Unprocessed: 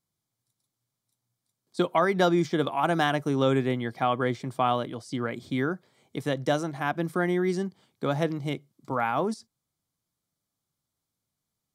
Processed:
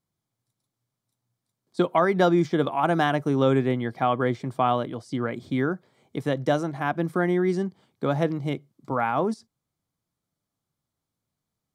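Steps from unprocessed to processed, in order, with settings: high shelf 2500 Hz -7.5 dB; gain +3 dB

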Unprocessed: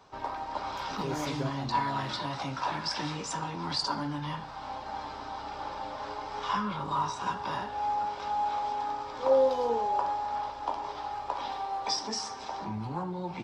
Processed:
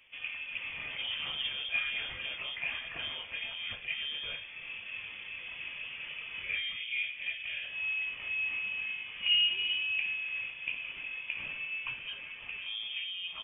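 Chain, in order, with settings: 6.42–7.64 bell 2600 Hz -10.5 dB 0.79 oct; inverted band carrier 3400 Hz; gain -4 dB

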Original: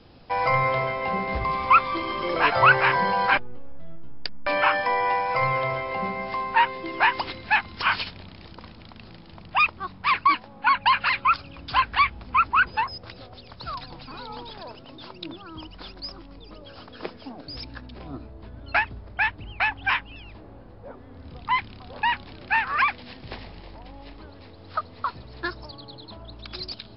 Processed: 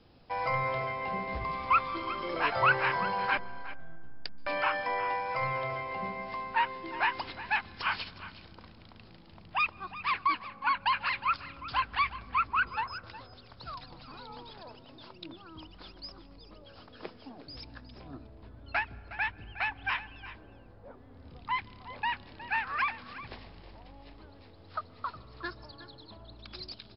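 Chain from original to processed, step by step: echo 0.363 s -15 dB; on a send at -23.5 dB: reverb RT60 2.2 s, pre-delay 0.124 s; on the sum: gain -8.5 dB

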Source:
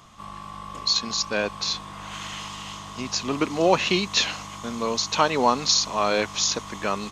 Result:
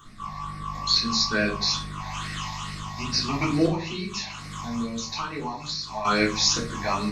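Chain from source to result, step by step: 3.66–6.05 compressor 6:1, threshold -31 dBFS, peak gain reduction 16.5 dB; phaser stages 8, 2.3 Hz, lowest notch 380–1000 Hz; shoebox room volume 270 m³, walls furnished, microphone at 3.5 m; gain -1.5 dB

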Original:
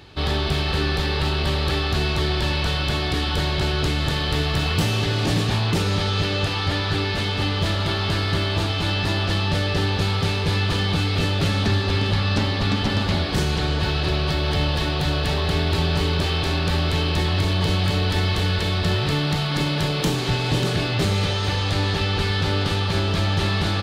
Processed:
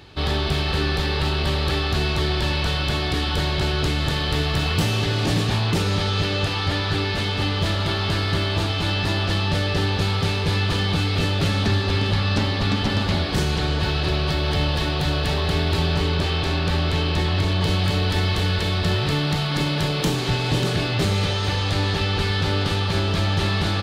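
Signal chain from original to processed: 15.94–17.64 high shelf 8400 Hz -7 dB

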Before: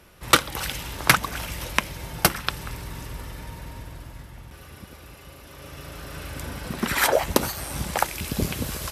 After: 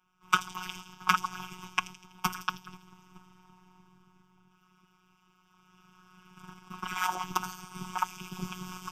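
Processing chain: gate -32 dBFS, range -11 dB; ten-band EQ 250 Hz -8 dB, 500 Hz -8 dB, 1000 Hz +9 dB, 8000 Hz -7 dB; AM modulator 230 Hz, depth 65%; frequency shift +33 Hz; fixed phaser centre 2800 Hz, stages 8; robotiser 183 Hz; on a send: thin delay 82 ms, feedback 51%, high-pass 5000 Hz, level -8.5 dB; on the sum: gain -2 dB

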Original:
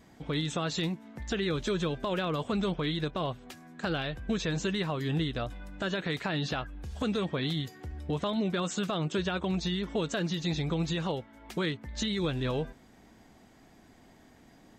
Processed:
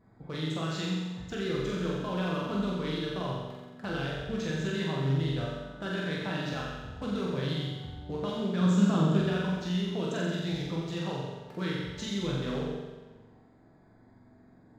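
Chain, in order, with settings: Wiener smoothing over 15 samples; 8.61–9.17 ten-band EQ 125 Hz +9 dB, 250 Hz +9 dB, 1000 Hz +4 dB; flutter echo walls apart 7.6 m, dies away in 1.1 s; two-slope reverb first 0.74 s, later 1.9 s, DRR 1 dB; gain -6.5 dB

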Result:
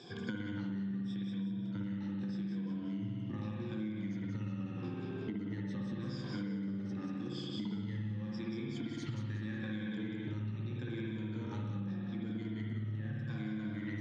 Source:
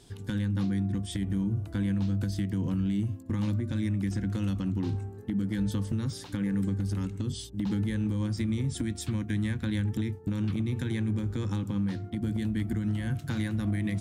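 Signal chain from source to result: moving spectral ripple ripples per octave 1.8, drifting -0.83 Hz, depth 14 dB; elliptic band-pass 120–5800 Hz, stop band 40 dB; high shelf 4400 Hz -5.5 dB; thin delay 0.183 s, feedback 46%, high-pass 1900 Hz, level -4.5 dB; spring tank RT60 2 s, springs 56 ms, chirp 75 ms, DRR -3 dB; compressor 10:1, threshold -40 dBFS, peak gain reduction 22.5 dB; gain +3.5 dB

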